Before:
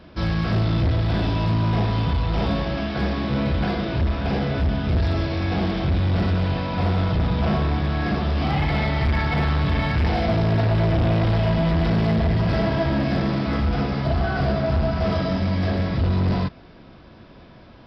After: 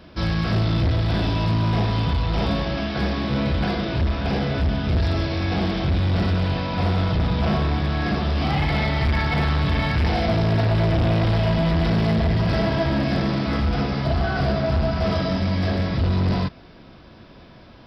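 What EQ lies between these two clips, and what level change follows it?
high shelf 4100 Hz +6.5 dB; 0.0 dB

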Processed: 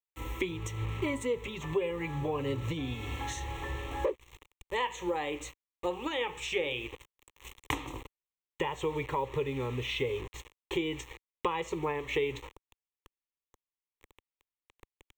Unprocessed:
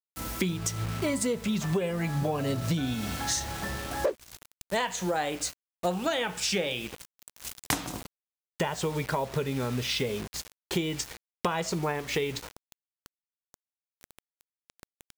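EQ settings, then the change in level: running mean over 4 samples; low shelf 68 Hz +6 dB; fixed phaser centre 1000 Hz, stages 8; 0.0 dB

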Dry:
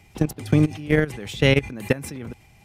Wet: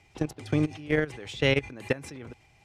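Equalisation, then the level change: LPF 7300 Hz 12 dB/oct; low shelf 130 Hz -6 dB; bell 200 Hz -9 dB 0.44 oct; -4.5 dB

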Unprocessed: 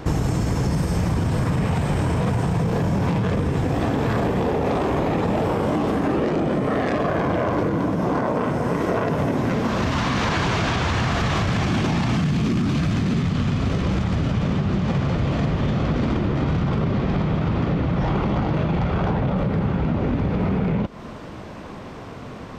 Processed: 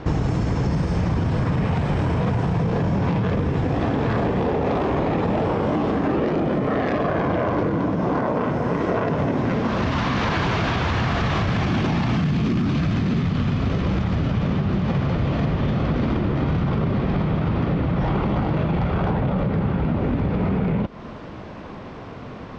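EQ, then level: Bessel low-pass 4300 Hz, order 6; 0.0 dB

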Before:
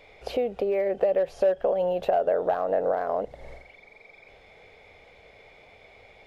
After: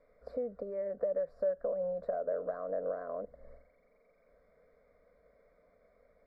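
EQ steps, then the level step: running mean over 14 samples; fixed phaser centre 540 Hz, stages 8; notch 920 Hz, Q 12; -8.5 dB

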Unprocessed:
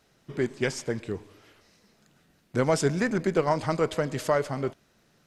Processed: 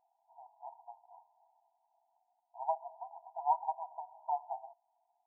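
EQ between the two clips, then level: brick-wall FIR high-pass 660 Hz; brick-wall FIR low-pass 1000 Hz; 0.0 dB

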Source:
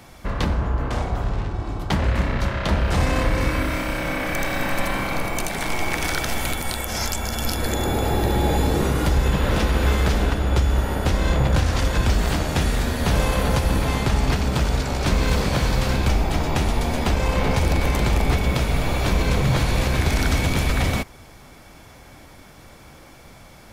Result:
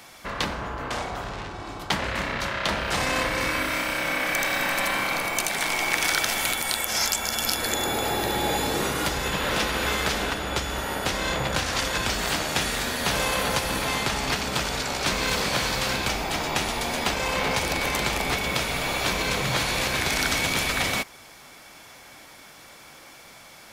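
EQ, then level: LPF 3800 Hz 6 dB/oct; tilt +3.5 dB/oct; bell 77 Hz -4.5 dB 0.59 oct; 0.0 dB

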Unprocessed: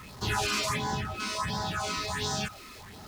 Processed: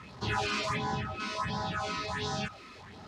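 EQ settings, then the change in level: HPF 74 Hz; Bessel low-pass 3700 Hz, order 2; -1.0 dB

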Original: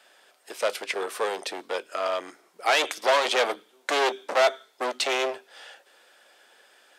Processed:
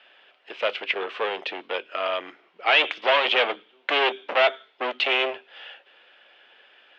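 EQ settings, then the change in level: synth low-pass 2900 Hz, resonance Q 3.4; air absorption 120 m; 0.0 dB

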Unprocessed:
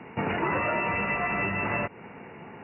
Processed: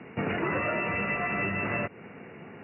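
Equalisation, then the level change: HPF 72 Hz; air absorption 96 m; bell 910 Hz -9 dB 0.38 oct; 0.0 dB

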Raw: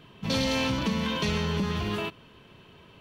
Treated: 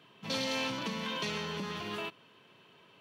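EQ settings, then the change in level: HPF 110 Hz 24 dB/oct; low shelf 270 Hz -10.5 dB; high shelf 12000 Hz -3 dB; -4.5 dB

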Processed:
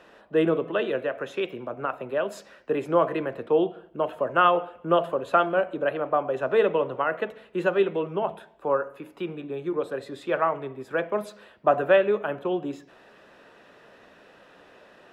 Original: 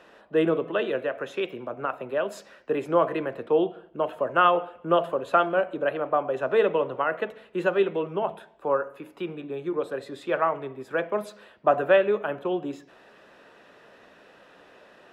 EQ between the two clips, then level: low shelf 150 Hz +3.5 dB; 0.0 dB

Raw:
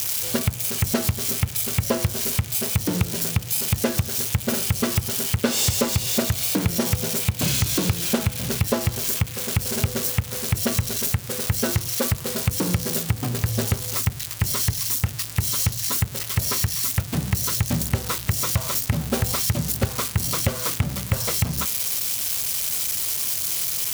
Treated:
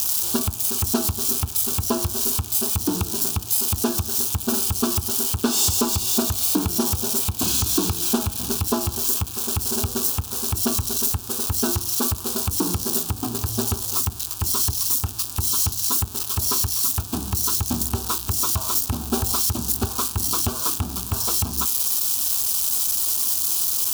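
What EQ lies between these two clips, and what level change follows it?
fixed phaser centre 540 Hz, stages 6; +3.5 dB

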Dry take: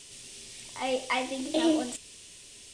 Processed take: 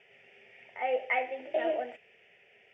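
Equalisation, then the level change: speaker cabinet 380–2200 Hz, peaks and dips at 570 Hz -5 dB, 970 Hz -6 dB, 1500 Hz -7 dB; fixed phaser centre 1100 Hz, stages 6; +6.0 dB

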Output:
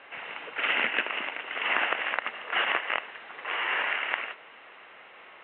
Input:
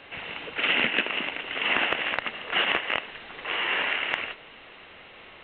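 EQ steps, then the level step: band-pass 1400 Hz, Q 0.66; air absorption 270 m; +2.5 dB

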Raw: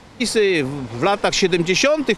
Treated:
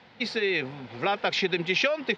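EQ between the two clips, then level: speaker cabinet 120–4100 Hz, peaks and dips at 300 Hz -9 dB, 600 Hz -4 dB, 1100 Hz -8 dB; low shelf 260 Hz -8 dB; notch 430 Hz, Q 12; -4.5 dB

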